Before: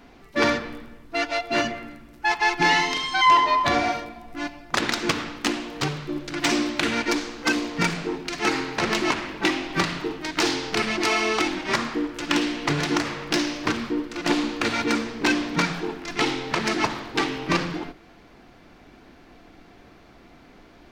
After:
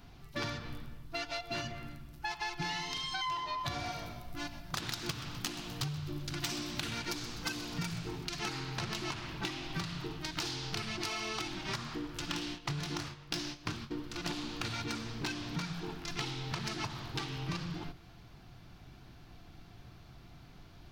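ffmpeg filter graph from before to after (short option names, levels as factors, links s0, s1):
-filter_complex "[0:a]asettb=1/sr,asplit=3[s0][s1][s2];[s0]atrim=end=3.594[s3];[s1]atrim=start=3.59:end=8.25,asetpts=PTS-STARTPTS,afade=t=in:d=0.004:c=qsin,afade=t=out:st=4.656:d=0.004:c=qsin,highshelf=f=9700:g=8,asplit=5[s4][s5][s6][s7][s8];[s5]adelay=126,afreqshift=-56,volume=0.158[s9];[s6]adelay=252,afreqshift=-112,volume=0.0684[s10];[s7]adelay=378,afreqshift=-168,volume=0.0292[s11];[s8]adelay=504,afreqshift=-224,volume=0.0126[s12];[s4][s9][s10][s11][s12]amix=inputs=5:normalize=0,atrim=end_sample=205506[s13];[s2]atrim=start=8.246[s14];[s3][s13]acrossfade=d=0.004:c1=hsin:c2=qsin[s15];[s15][s14]acrossfade=d=0.004:c1=qsin:c2=hsin,asettb=1/sr,asplit=3[s16][s17][s18];[s16]atrim=end=12.314[s19];[s17]atrim=start=12.31:end=13.96,asetpts=PTS-STARTPTS,afade=t=in:d=0.004:c=qsin,afade=t=out:st=1.646:d=0.004:c=qsin,agate=range=0.2:threshold=0.0316:ratio=16:release=100:detection=peak,asplit=2[s20][s21];[s21]adelay=23,volume=0.376[s22];[s20][s22]amix=inputs=2:normalize=0,atrim=end_sample=72765[s23];[s18]atrim=start=13.956[s24];[s19][s23]acrossfade=d=0.004:c1=hsin:c2=qsin[s25];[s25][s24]acrossfade=d=0.004:c1=qsin:c2=hsin,equalizer=f=125:t=o:w=1:g=9,equalizer=f=250:t=o:w=1:g=-10,equalizer=f=500:t=o:w=1:g=-11,equalizer=f=1000:t=o:w=1:g=-4,equalizer=f=2000:t=o:w=1:g=-9,equalizer=f=8000:t=o:w=1:g=-6,acompressor=threshold=0.0178:ratio=5,equalizer=f=11000:w=0.57:g=2.5"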